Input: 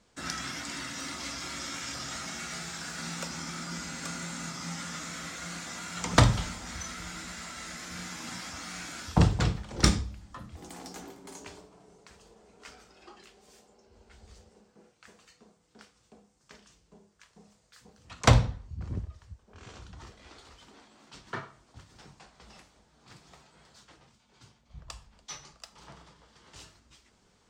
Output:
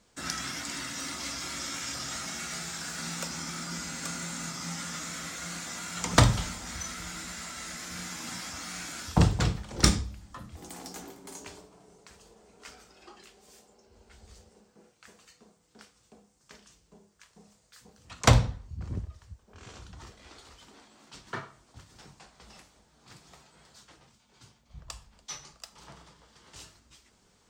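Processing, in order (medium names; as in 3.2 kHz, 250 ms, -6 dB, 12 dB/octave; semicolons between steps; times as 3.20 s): treble shelf 8.3 kHz +8.5 dB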